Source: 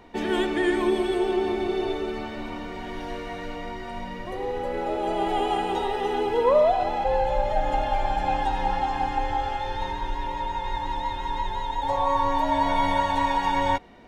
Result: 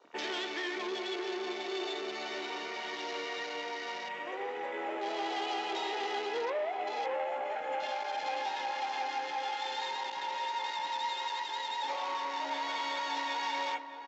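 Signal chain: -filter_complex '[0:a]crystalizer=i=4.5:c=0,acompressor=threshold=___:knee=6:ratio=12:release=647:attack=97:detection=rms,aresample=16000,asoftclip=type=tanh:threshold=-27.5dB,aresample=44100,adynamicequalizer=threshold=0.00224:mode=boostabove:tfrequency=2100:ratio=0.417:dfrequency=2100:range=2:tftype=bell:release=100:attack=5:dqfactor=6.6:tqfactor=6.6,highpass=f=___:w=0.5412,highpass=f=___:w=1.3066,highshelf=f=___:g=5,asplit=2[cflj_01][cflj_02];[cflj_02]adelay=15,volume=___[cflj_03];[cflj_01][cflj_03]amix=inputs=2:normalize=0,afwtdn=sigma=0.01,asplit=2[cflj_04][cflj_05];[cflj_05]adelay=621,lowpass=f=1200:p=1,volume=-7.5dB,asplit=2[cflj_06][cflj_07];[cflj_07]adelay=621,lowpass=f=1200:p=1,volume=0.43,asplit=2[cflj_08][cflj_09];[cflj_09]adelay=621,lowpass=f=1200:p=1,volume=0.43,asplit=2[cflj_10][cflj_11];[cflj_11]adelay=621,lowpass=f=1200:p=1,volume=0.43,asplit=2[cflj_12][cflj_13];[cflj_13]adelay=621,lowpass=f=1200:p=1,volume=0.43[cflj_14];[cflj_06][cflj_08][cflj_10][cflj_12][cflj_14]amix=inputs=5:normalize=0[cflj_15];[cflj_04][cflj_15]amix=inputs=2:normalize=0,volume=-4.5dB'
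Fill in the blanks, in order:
-24dB, 320, 320, 2700, -10dB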